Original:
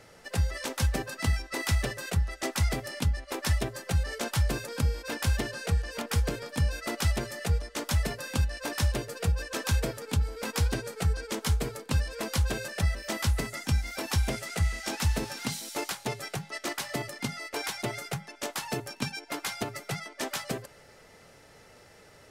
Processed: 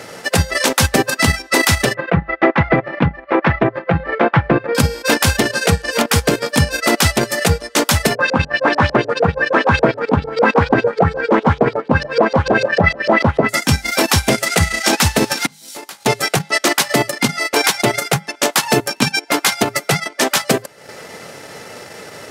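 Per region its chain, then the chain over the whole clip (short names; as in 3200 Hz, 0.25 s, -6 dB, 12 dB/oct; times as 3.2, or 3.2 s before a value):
1.94–4.75 LPF 2100 Hz 24 dB/oct + comb 6 ms, depth 42%
8.15–13.49 HPF 75 Hz + de-hum 143.9 Hz, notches 28 + LFO low-pass saw up 6.7 Hz 440–4900 Hz
15.46–16.06 compressor 8:1, threshold -43 dBFS + resonator 52 Hz, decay 0.41 s, mix 70% + three-band expander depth 100%
whole clip: HPF 150 Hz 12 dB/oct; transient shaper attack +1 dB, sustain -12 dB; maximiser +22 dB; gain -1 dB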